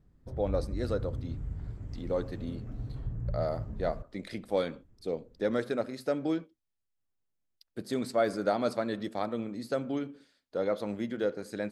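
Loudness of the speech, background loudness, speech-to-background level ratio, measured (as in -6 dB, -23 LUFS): -33.5 LUFS, -39.5 LUFS, 6.0 dB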